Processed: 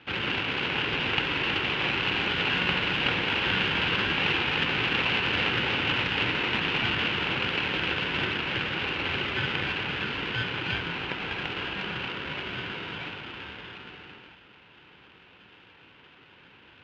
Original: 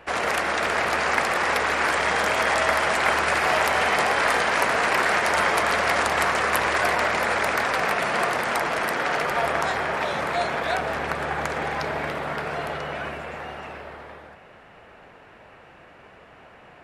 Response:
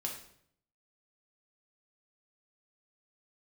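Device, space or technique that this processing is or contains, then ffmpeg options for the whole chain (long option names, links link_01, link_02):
ring modulator pedal into a guitar cabinet: -af "aeval=exprs='val(0)*sgn(sin(2*PI*820*n/s))':channel_layout=same,highpass=79,equalizer=frequency=230:width_type=q:width=4:gain=-3,equalizer=frequency=650:width_type=q:width=4:gain=-10,equalizer=frequency=1200:width_type=q:width=4:gain=-5,equalizer=frequency=1900:width_type=q:width=4:gain=-3,equalizer=frequency=2800:width_type=q:width=4:gain=7,lowpass=frequency=3500:width=0.5412,lowpass=frequency=3500:width=1.3066,volume=-4dB"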